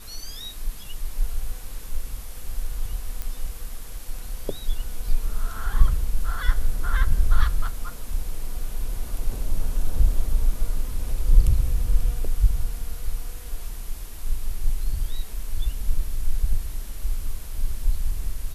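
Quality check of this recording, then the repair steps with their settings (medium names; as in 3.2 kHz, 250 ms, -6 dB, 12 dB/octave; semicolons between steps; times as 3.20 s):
3.22 s: pop -15 dBFS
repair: de-click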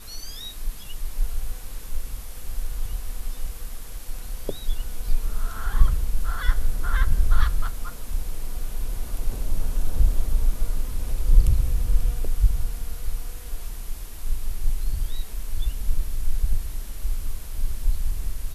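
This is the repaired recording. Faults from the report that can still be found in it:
nothing left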